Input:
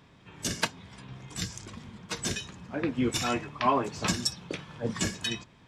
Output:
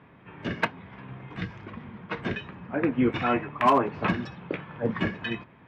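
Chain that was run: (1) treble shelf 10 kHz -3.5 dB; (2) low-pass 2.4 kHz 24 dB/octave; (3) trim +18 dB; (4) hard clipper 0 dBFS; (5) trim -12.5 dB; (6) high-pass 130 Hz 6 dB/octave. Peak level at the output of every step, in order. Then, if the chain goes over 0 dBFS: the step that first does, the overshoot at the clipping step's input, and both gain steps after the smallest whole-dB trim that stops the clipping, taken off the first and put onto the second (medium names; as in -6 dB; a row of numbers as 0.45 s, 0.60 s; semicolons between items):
-11.0 dBFS, -11.5 dBFS, +6.5 dBFS, 0.0 dBFS, -12.5 dBFS, -11.0 dBFS; step 3, 6.5 dB; step 3 +11 dB, step 5 -5.5 dB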